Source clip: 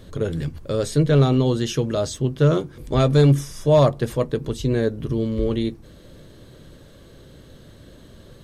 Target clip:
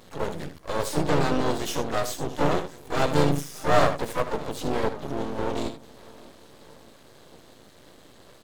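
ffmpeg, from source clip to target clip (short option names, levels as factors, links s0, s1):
-filter_complex "[0:a]asplit=2[s0][s1];[s1]aecho=0:1:620|1240|1860|2480:0.075|0.0412|0.0227|0.0125[s2];[s0][s2]amix=inputs=2:normalize=0,asplit=4[s3][s4][s5][s6];[s4]asetrate=52444,aresample=44100,atempo=0.840896,volume=0.501[s7];[s5]asetrate=55563,aresample=44100,atempo=0.793701,volume=0.126[s8];[s6]asetrate=88200,aresample=44100,atempo=0.5,volume=0.355[s9];[s3][s7][s8][s9]amix=inputs=4:normalize=0,highpass=f=390:p=1,asplit=2[s10][s11];[s11]aecho=0:1:67|78:0.141|0.251[s12];[s10][s12]amix=inputs=2:normalize=0,aeval=exprs='max(val(0),0)':c=same,volume=1.12"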